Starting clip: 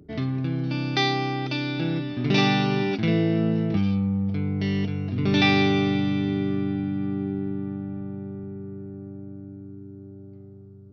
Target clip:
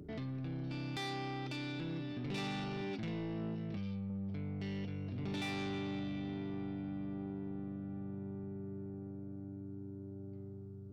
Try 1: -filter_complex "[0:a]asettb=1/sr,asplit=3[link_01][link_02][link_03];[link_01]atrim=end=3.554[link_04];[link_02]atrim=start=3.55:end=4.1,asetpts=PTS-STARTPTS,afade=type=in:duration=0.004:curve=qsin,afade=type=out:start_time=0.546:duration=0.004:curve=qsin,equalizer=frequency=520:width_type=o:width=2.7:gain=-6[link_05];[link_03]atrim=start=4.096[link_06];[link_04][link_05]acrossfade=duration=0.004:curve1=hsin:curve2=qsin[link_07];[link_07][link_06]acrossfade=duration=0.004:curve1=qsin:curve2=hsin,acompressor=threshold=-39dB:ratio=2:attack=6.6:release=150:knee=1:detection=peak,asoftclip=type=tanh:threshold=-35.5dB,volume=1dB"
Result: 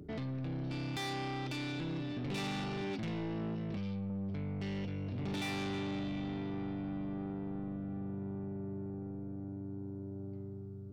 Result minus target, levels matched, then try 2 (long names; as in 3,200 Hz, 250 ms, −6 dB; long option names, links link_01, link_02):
downward compressor: peak gain reduction −4.5 dB
-filter_complex "[0:a]asettb=1/sr,asplit=3[link_01][link_02][link_03];[link_01]atrim=end=3.554[link_04];[link_02]atrim=start=3.55:end=4.1,asetpts=PTS-STARTPTS,afade=type=in:duration=0.004:curve=qsin,afade=type=out:start_time=0.546:duration=0.004:curve=qsin,equalizer=frequency=520:width_type=o:width=2.7:gain=-6[link_05];[link_03]atrim=start=4.096[link_06];[link_04][link_05]acrossfade=duration=0.004:curve1=hsin:curve2=qsin[link_07];[link_07][link_06]acrossfade=duration=0.004:curve1=qsin:curve2=hsin,acompressor=threshold=-48dB:ratio=2:attack=6.6:release=150:knee=1:detection=peak,asoftclip=type=tanh:threshold=-35.5dB,volume=1dB"